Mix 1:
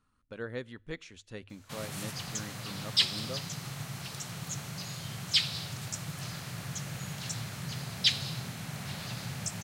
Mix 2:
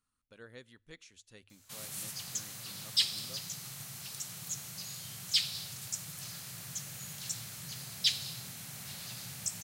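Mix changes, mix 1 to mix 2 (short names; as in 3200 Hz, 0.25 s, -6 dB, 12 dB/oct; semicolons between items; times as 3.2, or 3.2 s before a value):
background: send +11.5 dB; master: add pre-emphasis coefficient 0.8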